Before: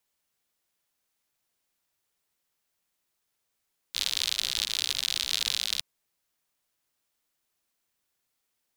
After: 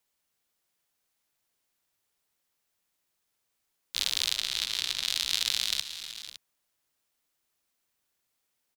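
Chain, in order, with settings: 4.37–5.08 high shelf 5200 Hz -6 dB; tapped delay 0.311/0.453/0.48/0.562 s -18/-15.5/-18.5/-15.5 dB

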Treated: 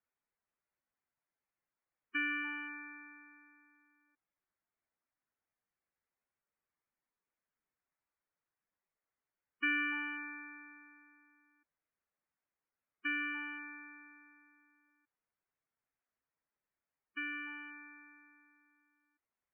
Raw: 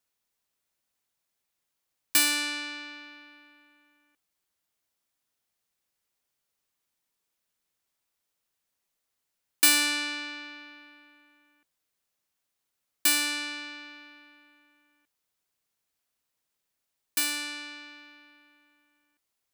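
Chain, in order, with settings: ladder low-pass 2700 Hz, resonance 20%; spectral gate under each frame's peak -10 dB strong

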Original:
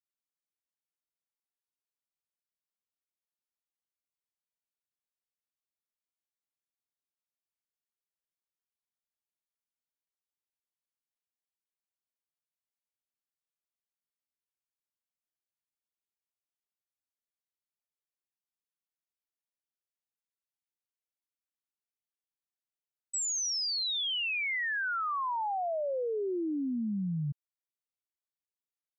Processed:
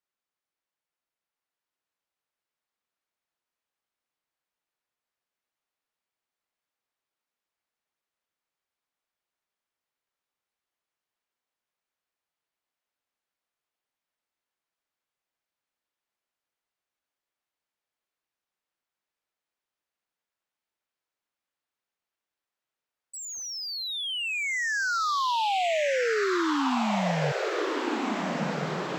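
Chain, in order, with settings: overdrive pedal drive 9 dB, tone 1500 Hz, clips at -29 dBFS; diffused feedback echo 1.441 s, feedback 67%, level -3.5 dB; gain +7 dB

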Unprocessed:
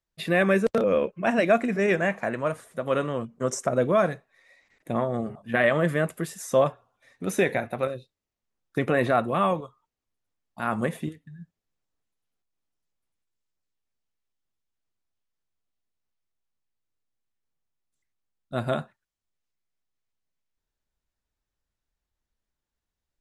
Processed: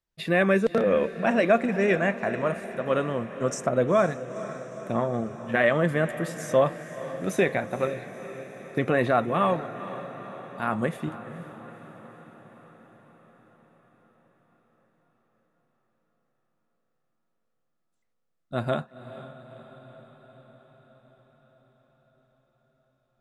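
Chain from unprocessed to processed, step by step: high shelf 8600 Hz -8 dB; on a send: diffused feedback echo 0.479 s, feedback 64%, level -13.5 dB

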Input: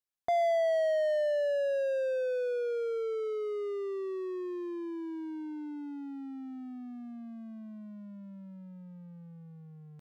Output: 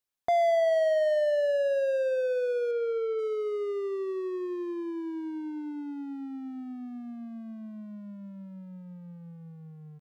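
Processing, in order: 2.71–3.19 LPF 4000 Hz 12 dB/oct; echo 0.199 s -19.5 dB; gain +3.5 dB

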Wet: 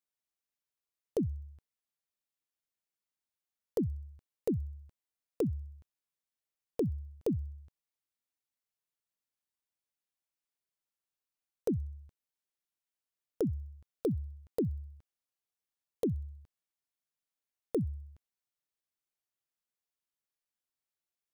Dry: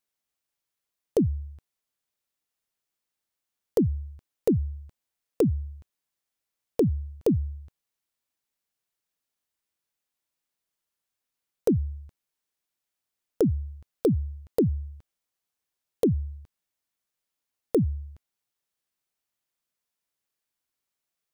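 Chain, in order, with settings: thin delay 64 ms, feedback 58%, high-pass 3700 Hz, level -23 dB; gain -9 dB

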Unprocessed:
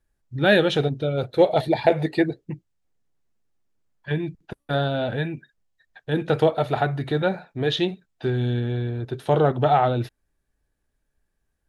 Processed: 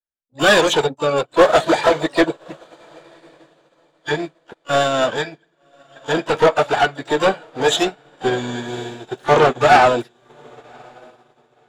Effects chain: bin magnitudes rounded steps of 15 dB; dynamic EQ 120 Hz, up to -4 dB, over -38 dBFS, Q 1; overdrive pedal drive 21 dB, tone 3600 Hz, clips at -4 dBFS; in parallel at +1.5 dB: limiter -11.5 dBFS, peak gain reduction 7 dB; on the sum: harmoniser +12 st -7 dB; soft clip 0 dBFS, distortion -23 dB; on a send: diffused feedback echo 1.116 s, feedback 52%, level -11 dB; on the sum: upward expander 2.5:1, over -31 dBFS; gain -1 dB

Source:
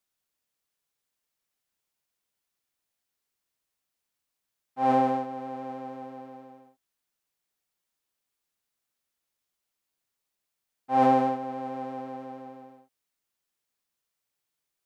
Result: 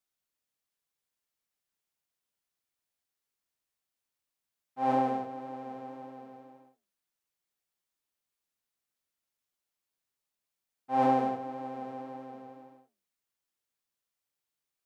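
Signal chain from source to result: flange 1.8 Hz, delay 7.4 ms, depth 6.7 ms, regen -81%

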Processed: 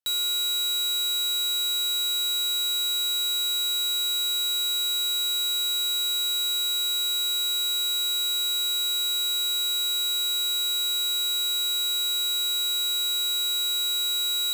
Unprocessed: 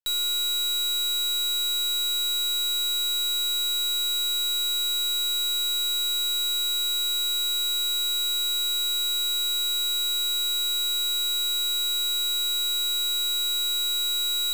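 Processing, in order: HPF 54 Hz

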